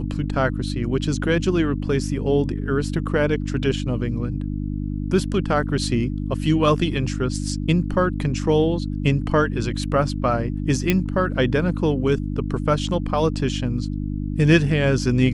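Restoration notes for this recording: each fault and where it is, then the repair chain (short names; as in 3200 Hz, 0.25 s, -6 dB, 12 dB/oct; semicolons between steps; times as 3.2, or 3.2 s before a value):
hum 50 Hz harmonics 6 -26 dBFS
10.9 pop -4 dBFS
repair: de-click; de-hum 50 Hz, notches 6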